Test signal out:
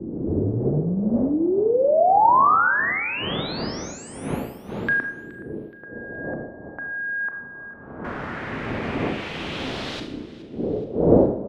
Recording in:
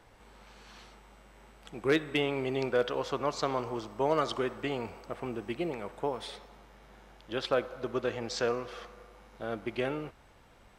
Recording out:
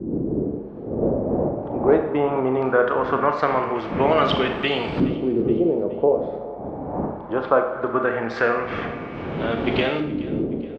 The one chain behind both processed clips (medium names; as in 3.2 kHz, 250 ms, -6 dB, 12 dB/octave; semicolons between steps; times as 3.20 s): wind noise 350 Hz -39 dBFS; high-pass 140 Hz 6 dB/octave; in parallel at +1 dB: compression, threshold -38 dBFS; on the sum: LFO low-pass saw up 0.2 Hz 310–4000 Hz; on a send: feedback delay 422 ms, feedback 45%, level -19.5 dB; on the sum: Schroeder reverb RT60 0.66 s, combs from 27 ms, DRR 5.5 dB; trim +6 dB